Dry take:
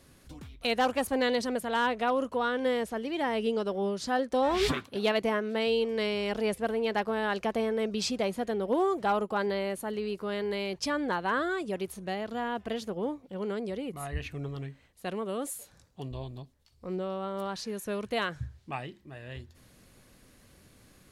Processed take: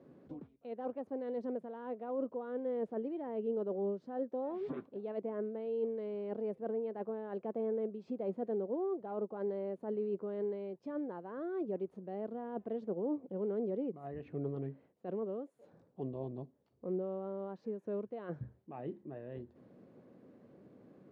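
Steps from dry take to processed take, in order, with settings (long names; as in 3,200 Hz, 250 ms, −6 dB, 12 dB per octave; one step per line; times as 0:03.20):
spectral tilt +3.5 dB per octave
reversed playback
downward compressor 6 to 1, threshold −41 dBFS, peak gain reduction 18.5 dB
reversed playback
flat-topped band-pass 270 Hz, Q 0.71
level +10.5 dB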